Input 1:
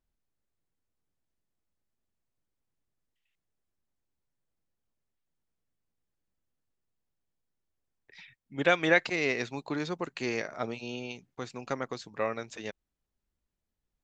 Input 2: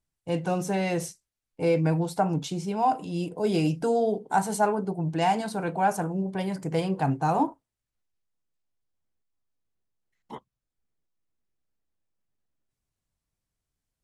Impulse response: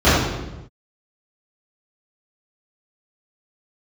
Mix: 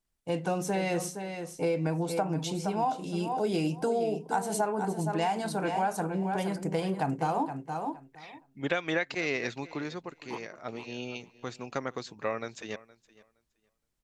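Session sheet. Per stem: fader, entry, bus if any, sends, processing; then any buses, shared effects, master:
+0.5 dB, 0.05 s, no send, echo send -21.5 dB, auto duck -10 dB, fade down 0.75 s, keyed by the second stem
+0.5 dB, 0.00 s, no send, echo send -10 dB, bell 74 Hz -15 dB 1.2 oct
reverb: off
echo: feedback echo 0.467 s, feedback 16%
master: compressor 6:1, threshold -25 dBFS, peak gain reduction 8.5 dB

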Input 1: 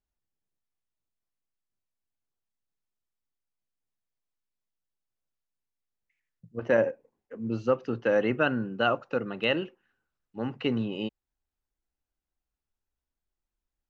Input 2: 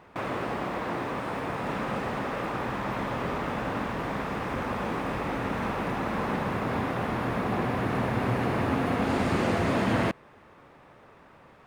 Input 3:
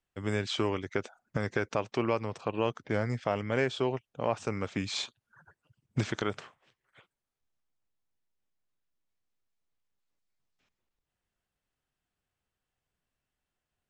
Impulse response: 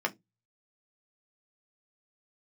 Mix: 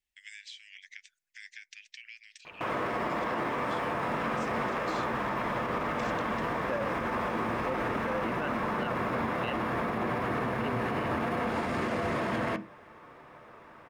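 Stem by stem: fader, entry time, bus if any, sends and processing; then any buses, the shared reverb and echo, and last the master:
-6.5 dB, 0.00 s, no send, dry
-3.5 dB, 2.45 s, send -6.5 dB, dry
-0.5 dB, 0.00 s, send -20 dB, steep high-pass 1800 Hz 72 dB/oct; compressor 12:1, threshold -44 dBFS, peak gain reduction 14 dB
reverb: on, RT60 0.20 s, pre-delay 3 ms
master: limiter -22.5 dBFS, peak gain reduction 10 dB

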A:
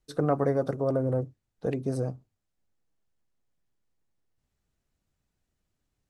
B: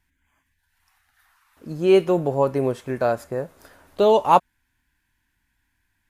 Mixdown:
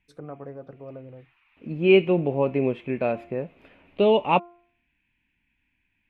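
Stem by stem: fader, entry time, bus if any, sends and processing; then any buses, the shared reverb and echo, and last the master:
-13.5 dB, 0.00 s, no send, treble ducked by the level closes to 2700 Hz; auto duck -14 dB, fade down 0.65 s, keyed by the second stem
-5.0 dB, 0.00 s, no send, EQ curve 110 Hz 0 dB, 190 Hz +8 dB, 1600 Hz -5 dB, 2500 Hz +15 dB, 5100 Hz -18 dB, 8200 Hz -25 dB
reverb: off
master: de-hum 347.7 Hz, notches 4

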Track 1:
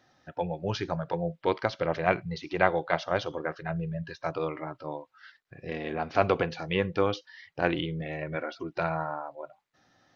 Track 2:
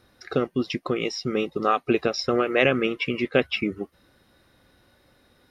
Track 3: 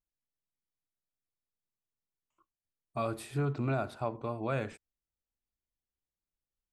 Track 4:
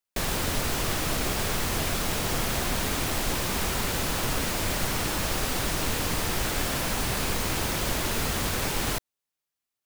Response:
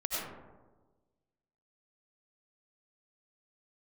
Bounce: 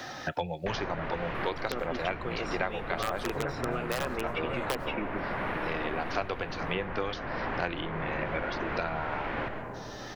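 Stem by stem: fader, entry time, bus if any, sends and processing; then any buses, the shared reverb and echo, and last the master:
-4.0 dB, 0.00 s, no send, dry
-10.5 dB, 1.35 s, send -21 dB, bell 5200 Hz -14 dB 0.24 oct; wrapped overs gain 10 dB
-9.0 dB, 0.00 s, no send, harmonic-percussive split harmonic +6 dB
-9.0 dB, 0.50 s, send -10.5 dB, LPF 1900 Hz 24 dB/oct; notch 1300 Hz, Q 23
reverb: on, RT60 1.3 s, pre-delay 55 ms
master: low shelf 400 Hz -6.5 dB; three-band squash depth 100%

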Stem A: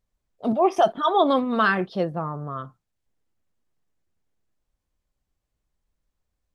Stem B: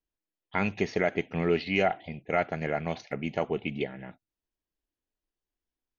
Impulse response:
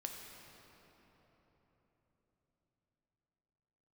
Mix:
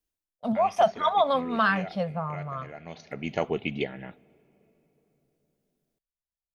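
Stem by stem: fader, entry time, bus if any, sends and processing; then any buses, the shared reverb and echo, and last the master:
-2.0 dB, 0.00 s, no send, Chebyshev band-stop 220–550 Hz, order 2; gate with hold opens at -42 dBFS
+1.0 dB, 0.00 s, send -22.5 dB, high shelf 4400 Hz +8 dB; auto duck -19 dB, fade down 0.35 s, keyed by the first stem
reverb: on, RT60 4.3 s, pre-delay 3 ms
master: dry

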